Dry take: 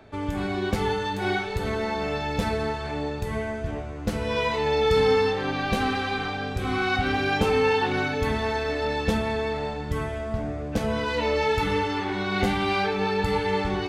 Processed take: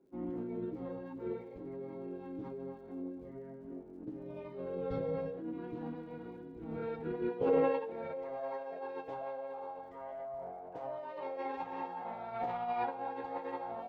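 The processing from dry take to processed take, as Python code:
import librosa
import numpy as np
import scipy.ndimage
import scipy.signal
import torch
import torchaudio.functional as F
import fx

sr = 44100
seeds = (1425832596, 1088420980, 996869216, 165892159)

y = fx.filter_sweep_bandpass(x, sr, from_hz=320.0, to_hz=750.0, start_s=6.8, end_s=8.6, q=6.4)
y = fx.pitch_keep_formants(y, sr, semitones=-8.5)
y = fx.dmg_crackle(y, sr, seeds[0], per_s=140.0, level_db=-66.0)
y = F.gain(torch.from_numpy(y), -2.5).numpy()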